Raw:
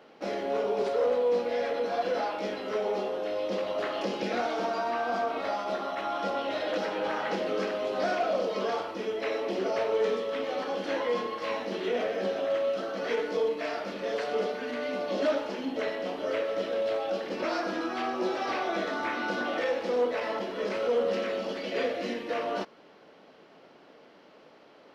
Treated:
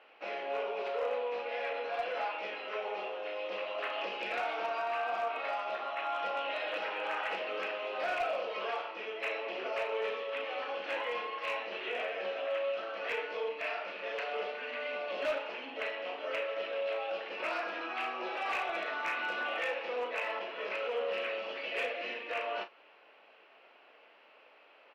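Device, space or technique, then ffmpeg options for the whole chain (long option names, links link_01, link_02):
megaphone: -filter_complex "[0:a]highpass=660,lowpass=2800,equalizer=frequency=2600:width_type=o:width=0.4:gain=12,asoftclip=type=hard:threshold=-24.5dB,asplit=2[link_01][link_02];[link_02]adelay=36,volume=-10.5dB[link_03];[link_01][link_03]amix=inputs=2:normalize=0,volume=-3dB"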